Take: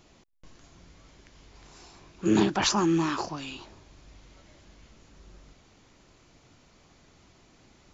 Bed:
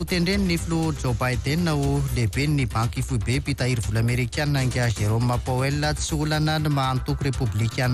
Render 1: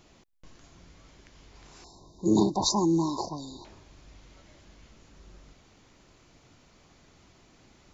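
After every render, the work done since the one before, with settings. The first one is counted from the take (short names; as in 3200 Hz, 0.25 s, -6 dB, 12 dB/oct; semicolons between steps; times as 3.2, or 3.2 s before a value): 1.84–3.65 brick-wall FIR band-stop 1100–3600 Hz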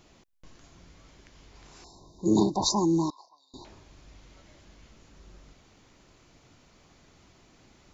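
3.1–3.54 ladder band-pass 2000 Hz, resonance 30%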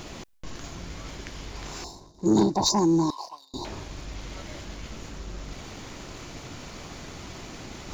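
reverse; upward compressor, threshold -29 dBFS; reverse; sample leveller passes 1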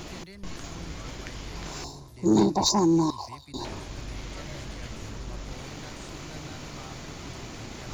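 add bed -24 dB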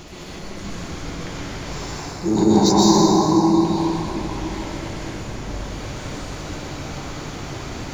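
plate-style reverb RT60 4.4 s, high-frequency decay 0.45×, pre-delay 0.11 s, DRR -8 dB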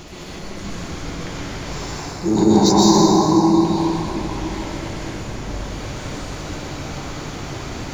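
gain +1.5 dB; limiter -2 dBFS, peak gain reduction 1 dB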